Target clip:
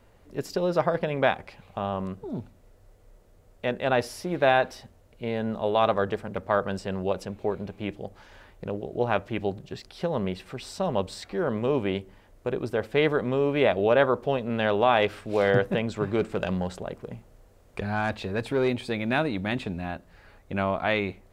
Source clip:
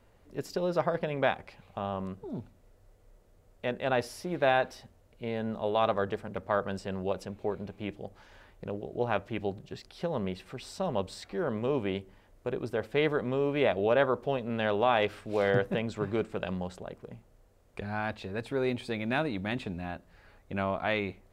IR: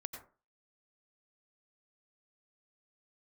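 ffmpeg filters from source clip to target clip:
-filter_complex "[0:a]asettb=1/sr,asplit=3[link_01][link_02][link_03];[link_01]atrim=end=16.194[link_04];[link_02]atrim=start=16.19:end=18.68,asetpts=PTS-STARTPTS,afade=type=in:duration=0.004:curve=qsin,afade=type=out:start_time=2.486:duration=0.004:curve=qsin,aeval=exprs='0.119*(cos(1*acos(clip(val(0)/0.119,-1,1)))-cos(1*PI/2))+0.00841*(cos(5*acos(clip(val(0)/0.119,-1,1)))-cos(5*PI/2))':channel_layout=same[link_05];[link_03]atrim=start=18.676[link_06];[link_04][link_05]acrossfade=duration=0.004:curve1=hsin:curve2=qsin[link_07];[link_07][link_06]acrossfade=duration=0.004:curve1=qsin:curve2=hsin,volume=4.5dB"

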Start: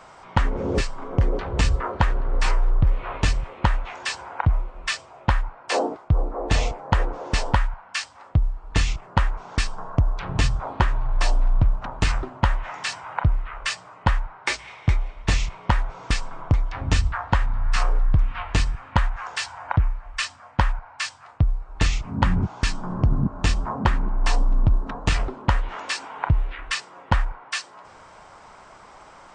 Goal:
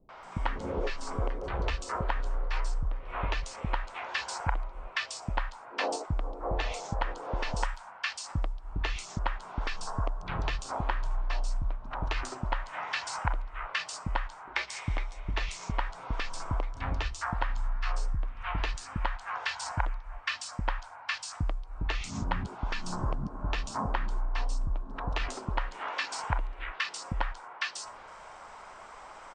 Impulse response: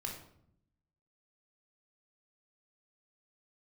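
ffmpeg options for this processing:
-filter_complex "[0:a]equalizer=frequency=120:width=0.66:gain=-10,acompressor=threshold=-27dB:ratio=6,acrossover=split=320|4700[link_01][link_02][link_03];[link_02]adelay=90[link_04];[link_03]adelay=230[link_05];[link_01][link_04][link_05]amix=inputs=3:normalize=0"

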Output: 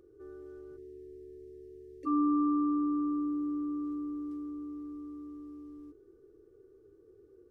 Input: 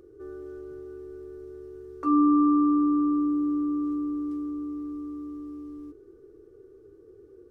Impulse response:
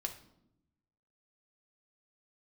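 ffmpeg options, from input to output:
-filter_complex "[0:a]asplit=3[link_01][link_02][link_03];[link_01]afade=type=out:start_time=0.76:duration=0.02[link_04];[link_02]asuperstop=centerf=1000:order=20:qfactor=0.83,afade=type=in:start_time=0.76:duration=0.02,afade=type=out:start_time=2.05:duration=0.02[link_05];[link_03]afade=type=in:start_time=2.05:duration=0.02[link_06];[link_04][link_05][link_06]amix=inputs=3:normalize=0,volume=-7.5dB"

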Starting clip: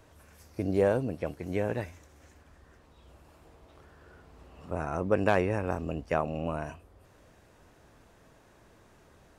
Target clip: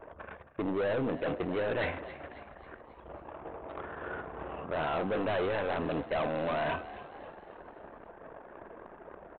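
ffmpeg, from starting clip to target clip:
ffmpeg -i in.wav -filter_complex "[0:a]bandreject=frequency=254.1:width_type=h:width=4,bandreject=frequency=508.2:width_type=h:width=4,bandreject=frequency=762.3:width_type=h:width=4,bandreject=frequency=1016.4:width_type=h:width=4,bandreject=frequency=1270.5:width_type=h:width=4,bandreject=frequency=1524.6:width_type=h:width=4,bandreject=frequency=1778.7:width_type=h:width=4,bandreject=frequency=2032.8:width_type=h:width=4,bandreject=frequency=2286.9:width_type=h:width=4,bandreject=frequency=2541:width_type=h:width=4,bandreject=frequency=2795.1:width_type=h:width=4,bandreject=frequency=3049.2:width_type=h:width=4,bandreject=frequency=3303.3:width_type=h:width=4,bandreject=frequency=3557.4:width_type=h:width=4,bandreject=frequency=3811.5:width_type=h:width=4,bandreject=frequency=4065.6:width_type=h:width=4,bandreject=frequency=4319.7:width_type=h:width=4,bandreject=frequency=4573.8:width_type=h:width=4,bandreject=frequency=4827.9:width_type=h:width=4,bandreject=frequency=5082:width_type=h:width=4,bandreject=frequency=5336.1:width_type=h:width=4,bandreject=frequency=5590.2:width_type=h:width=4,bandreject=frequency=5844.3:width_type=h:width=4,bandreject=frequency=6098.4:width_type=h:width=4,bandreject=frequency=6352.5:width_type=h:width=4,bandreject=frequency=6606.6:width_type=h:width=4,bandreject=frequency=6860.7:width_type=h:width=4,bandreject=frequency=7114.8:width_type=h:width=4,bandreject=frequency=7368.9:width_type=h:width=4,asplit=2[link_01][link_02];[link_02]highpass=frequency=720:poles=1,volume=22dB,asoftclip=type=tanh:threshold=-11.5dB[link_03];[link_01][link_03]amix=inputs=2:normalize=0,lowpass=frequency=1500:poles=1,volume=-6dB,areverse,acompressor=threshold=-31dB:ratio=8,areverse,anlmdn=0.0398,aresample=8000,asoftclip=type=hard:threshold=-34dB,aresample=44100,asplit=6[link_04][link_05][link_06][link_07][link_08][link_09];[link_05]adelay=271,afreqshift=60,volume=-15dB[link_10];[link_06]adelay=542,afreqshift=120,volume=-21dB[link_11];[link_07]adelay=813,afreqshift=180,volume=-27dB[link_12];[link_08]adelay=1084,afreqshift=240,volume=-33.1dB[link_13];[link_09]adelay=1355,afreqshift=300,volume=-39.1dB[link_14];[link_04][link_10][link_11][link_12][link_13][link_14]amix=inputs=6:normalize=0,volume=6dB" out.wav

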